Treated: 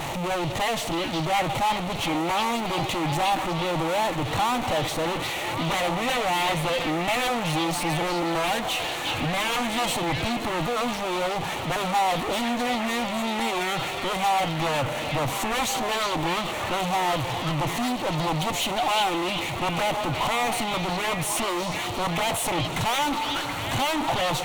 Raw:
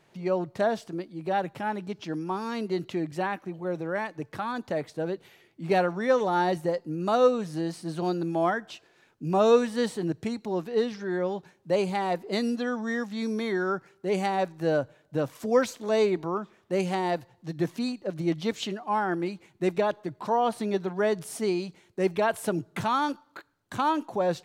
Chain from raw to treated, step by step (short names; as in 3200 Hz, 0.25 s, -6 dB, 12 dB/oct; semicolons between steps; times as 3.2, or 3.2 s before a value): zero-crossing step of -38 dBFS; high shelf 9100 Hz -10.5 dB; in parallel at -2.5 dB: limiter -22.5 dBFS, peak gain reduction 12 dB; on the sum: sine folder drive 13 dB, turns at -9.5 dBFS; tube stage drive 19 dB, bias 0.7; thirty-one-band EQ 200 Hz -11 dB, 400 Hz -10 dB, 800 Hz +5 dB, 1600 Hz -9 dB, 5000 Hz -9 dB; on a send: delay with a stepping band-pass 0.364 s, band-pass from 3600 Hz, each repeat -0.7 oct, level -0.5 dB; on the sum: gain -3.5 dB